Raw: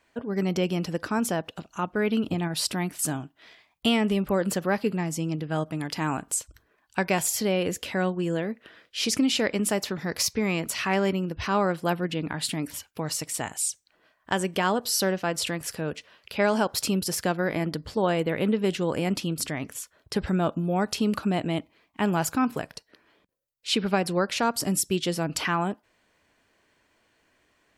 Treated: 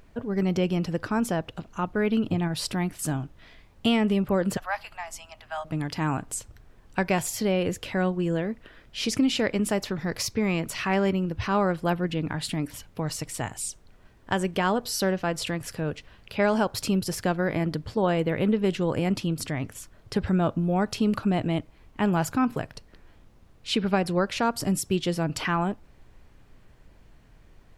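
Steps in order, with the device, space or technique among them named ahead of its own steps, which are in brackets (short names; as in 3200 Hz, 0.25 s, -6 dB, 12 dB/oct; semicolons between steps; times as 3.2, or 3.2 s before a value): 4.57–5.65 steep high-pass 640 Hz 72 dB/oct; car interior (bell 110 Hz +9 dB 0.77 oct; high shelf 4300 Hz -6.5 dB; brown noise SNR 24 dB)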